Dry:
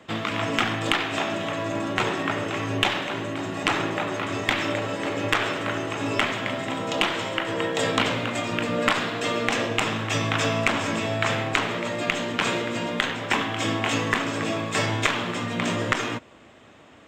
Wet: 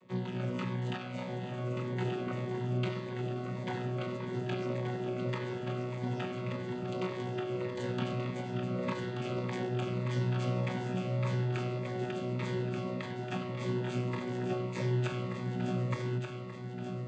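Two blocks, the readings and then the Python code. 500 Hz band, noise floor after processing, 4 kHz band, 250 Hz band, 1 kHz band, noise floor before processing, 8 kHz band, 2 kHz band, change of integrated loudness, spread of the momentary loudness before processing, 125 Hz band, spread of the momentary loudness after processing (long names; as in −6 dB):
−8.0 dB, −40 dBFS, −19.5 dB, −7.5 dB, −14.5 dB, −50 dBFS, −21.5 dB, −18.5 dB, −10.0 dB, 5 LU, −0.5 dB, 5 LU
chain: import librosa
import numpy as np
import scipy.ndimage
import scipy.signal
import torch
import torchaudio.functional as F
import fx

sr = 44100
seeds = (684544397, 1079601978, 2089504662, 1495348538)

y = fx.chord_vocoder(x, sr, chord='bare fifth', root=47)
y = fx.echo_feedback(y, sr, ms=1181, feedback_pct=55, wet_db=-6.0)
y = fx.notch_cascade(y, sr, direction='falling', hz=1.7)
y = F.gain(torch.from_numpy(y), -7.5).numpy()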